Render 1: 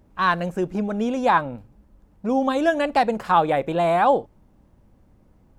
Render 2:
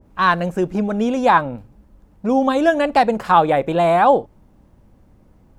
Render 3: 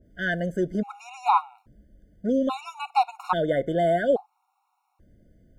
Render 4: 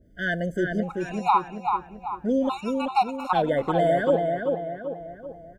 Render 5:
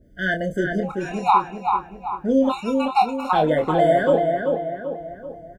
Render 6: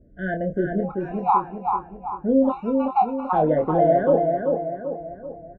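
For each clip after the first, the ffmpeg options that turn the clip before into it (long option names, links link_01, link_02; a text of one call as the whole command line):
ffmpeg -i in.wav -af "adynamicequalizer=threshold=0.0398:dfrequency=1600:dqfactor=0.7:tfrequency=1600:tqfactor=0.7:attack=5:release=100:ratio=0.375:range=2:mode=cutabove:tftype=highshelf,volume=4.5dB" out.wav
ffmpeg -i in.wav -af "afftfilt=real='re*gt(sin(2*PI*0.6*pts/sr)*(1-2*mod(floor(b*sr/1024/730),2)),0)':imag='im*gt(sin(2*PI*0.6*pts/sr)*(1-2*mod(floor(b*sr/1024/730),2)),0)':win_size=1024:overlap=0.75,volume=-5.5dB" out.wav
ffmpeg -i in.wav -filter_complex "[0:a]asplit=2[link_01][link_02];[link_02]adelay=387,lowpass=frequency=2300:poles=1,volume=-4dB,asplit=2[link_03][link_04];[link_04]adelay=387,lowpass=frequency=2300:poles=1,volume=0.48,asplit=2[link_05][link_06];[link_06]adelay=387,lowpass=frequency=2300:poles=1,volume=0.48,asplit=2[link_07][link_08];[link_08]adelay=387,lowpass=frequency=2300:poles=1,volume=0.48,asplit=2[link_09][link_10];[link_10]adelay=387,lowpass=frequency=2300:poles=1,volume=0.48,asplit=2[link_11][link_12];[link_12]adelay=387,lowpass=frequency=2300:poles=1,volume=0.48[link_13];[link_01][link_03][link_05][link_07][link_09][link_11][link_13]amix=inputs=7:normalize=0" out.wav
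ffmpeg -i in.wav -filter_complex "[0:a]asplit=2[link_01][link_02];[link_02]adelay=26,volume=-6dB[link_03];[link_01][link_03]amix=inputs=2:normalize=0,volume=3dB" out.wav
ffmpeg -i in.wav -af "lowpass=1000" out.wav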